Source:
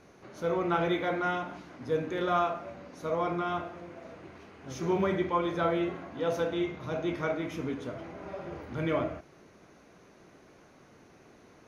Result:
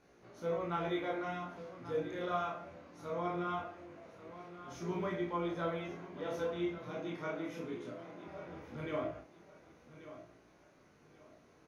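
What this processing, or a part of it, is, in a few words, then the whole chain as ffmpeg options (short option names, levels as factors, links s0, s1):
double-tracked vocal: -filter_complex "[0:a]asplit=2[s0][s1];[s1]adelay=34,volume=0.631[s2];[s0][s2]amix=inputs=2:normalize=0,flanger=delay=17:depth=7.5:speed=0.2,asettb=1/sr,asplit=3[s3][s4][s5];[s3]atrim=end=6.784[s6];[s4]atrim=start=6.78:end=8.28,asetpts=PTS-STARTPTS,afade=t=in:d=0.004:c=qsin,afade=t=out:st=1.496:d=0.004:c=qsin,highpass=f=130:w=0.5412,highpass=f=130:w=1.3066[s7];[s5]atrim=start=8.276[s8];[s6][s7]acrossfade=d=0.004:c1=hsin:c2=qsin[s9];[s9][s8]acrossfade=d=0.004:c1=qsin:c2=hsin,aecho=1:1:1135|2270|3405:0.2|0.0599|0.018,volume=0.473"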